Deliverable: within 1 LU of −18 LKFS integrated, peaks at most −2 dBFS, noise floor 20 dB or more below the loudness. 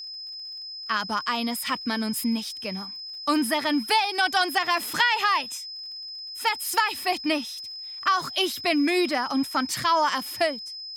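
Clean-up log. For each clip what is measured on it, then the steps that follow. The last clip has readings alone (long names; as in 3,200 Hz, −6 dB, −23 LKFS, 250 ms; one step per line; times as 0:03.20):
crackle rate 38 per second; interfering tone 5,100 Hz; level of the tone −35 dBFS; integrated loudness −25.5 LKFS; sample peak −9.0 dBFS; target loudness −18.0 LKFS
→ click removal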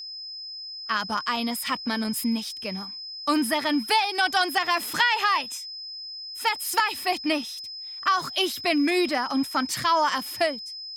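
crackle rate 0.55 per second; interfering tone 5,100 Hz; level of the tone −35 dBFS
→ notch filter 5,100 Hz, Q 30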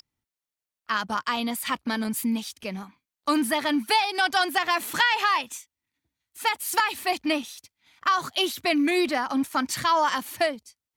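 interfering tone none found; integrated loudness −25.0 LKFS; sample peak −9.5 dBFS; target loudness −18.0 LKFS
→ level +7 dB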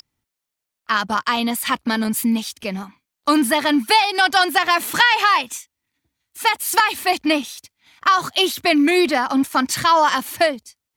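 integrated loudness −18.0 LKFS; sample peak −2.5 dBFS; background noise floor −83 dBFS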